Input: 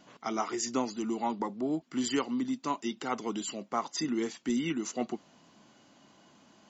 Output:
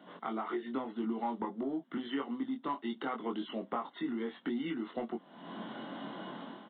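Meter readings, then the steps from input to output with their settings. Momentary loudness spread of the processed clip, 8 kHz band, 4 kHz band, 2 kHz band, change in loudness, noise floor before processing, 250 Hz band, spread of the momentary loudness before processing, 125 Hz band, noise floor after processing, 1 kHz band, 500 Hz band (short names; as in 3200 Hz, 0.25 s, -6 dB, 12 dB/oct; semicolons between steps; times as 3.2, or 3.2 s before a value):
7 LU, n/a, -7.5 dB, -3.5 dB, -5.0 dB, -62 dBFS, -4.0 dB, 4 LU, -5.5 dB, -59 dBFS, -3.5 dB, -3.5 dB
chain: steep high-pass 160 Hz 36 dB/oct; bell 2500 Hz -13 dB 0.35 oct; AGC gain up to 14 dB; in parallel at -9 dB: soft clip -15.5 dBFS, distortion -12 dB; on the sum: dynamic EQ 1800 Hz, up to +3 dB, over -29 dBFS, Q 0.85; compressor 6:1, threshold -37 dBFS, peak gain reduction 24.5 dB; downsampling 8000 Hz; doubler 22 ms -4 dB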